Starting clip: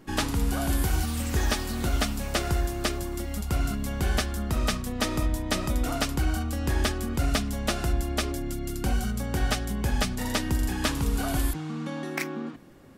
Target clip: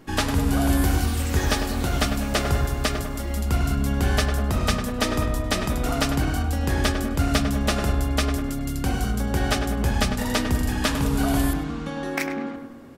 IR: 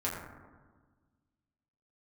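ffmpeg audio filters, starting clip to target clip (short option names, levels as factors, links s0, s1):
-filter_complex "[0:a]bandreject=f=50:t=h:w=6,bandreject=f=100:t=h:w=6,bandreject=f=150:t=h:w=6,bandreject=f=200:t=h:w=6,bandreject=f=250:t=h:w=6,bandreject=f=300:t=h:w=6,bandreject=f=350:t=h:w=6,asplit=2[s0][s1];[s1]adelay=101,lowpass=f=2200:p=1,volume=0.447,asplit=2[s2][s3];[s3]adelay=101,lowpass=f=2200:p=1,volume=0.55,asplit=2[s4][s5];[s5]adelay=101,lowpass=f=2200:p=1,volume=0.55,asplit=2[s6][s7];[s7]adelay=101,lowpass=f=2200:p=1,volume=0.55,asplit=2[s8][s9];[s9]adelay=101,lowpass=f=2200:p=1,volume=0.55,asplit=2[s10][s11];[s11]adelay=101,lowpass=f=2200:p=1,volume=0.55,asplit=2[s12][s13];[s13]adelay=101,lowpass=f=2200:p=1,volume=0.55[s14];[s0][s2][s4][s6][s8][s10][s12][s14]amix=inputs=8:normalize=0,asplit=2[s15][s16];[1:a]atrim=start_sample=2205,lowpass=6800[s17];[s16][s17]afir=irnorm=-1:irlink=0,volume=0.188[s18];[s15][s18]amix=inputs=2:normalize=0,volume=1.33"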